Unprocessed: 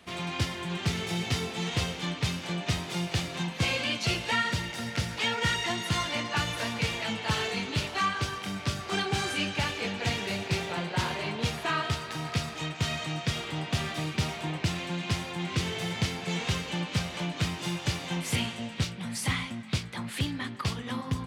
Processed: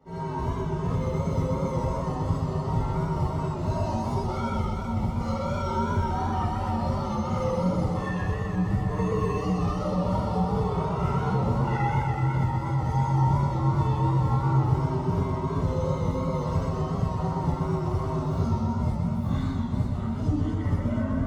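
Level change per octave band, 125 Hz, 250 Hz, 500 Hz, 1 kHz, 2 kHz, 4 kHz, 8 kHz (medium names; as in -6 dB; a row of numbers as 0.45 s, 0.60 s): +8.0 dB, +6.0 dB, +6.5 dB, +5.5 dB, -10.0 dB, -16.5 dB, under -10 dB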